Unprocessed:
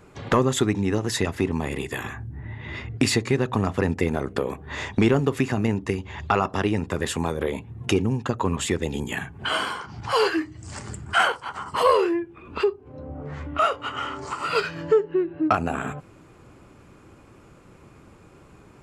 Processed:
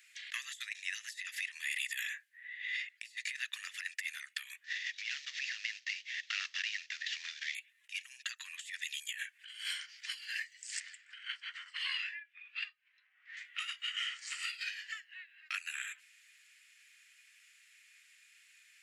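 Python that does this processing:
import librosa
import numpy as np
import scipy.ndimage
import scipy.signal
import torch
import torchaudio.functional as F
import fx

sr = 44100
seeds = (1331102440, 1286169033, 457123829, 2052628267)

y = fx.cvsd(x, sr, bps=32000, at=(4.64, 7.55))
y = fx.lowpass(y, sr, hz=3400.0, slope=12, at=(10.8, 13.37))
y = scipy.signal.sosfilt(scipy.signal.cheby1(5, 1.0, 1800.0, 'highpass', fs=sr, output='sos'), y)
y = fx.over_compress(y, sr, threshold_db=-37.0, ratio=-0.5)
y = y * librosa.db_to_amplitude(-1.5)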